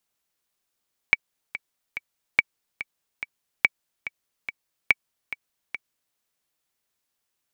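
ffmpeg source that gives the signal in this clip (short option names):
-f lavfi -i "aevalsrc='pow(10,(-2.5-14.5*gte(mod(t,3*60/143),60/143))/20)*sin(2*PI*2280*mod(t,60/143))*exp(-6.91*mod(t,60/143)/0.03)':d=5.03:s=44100"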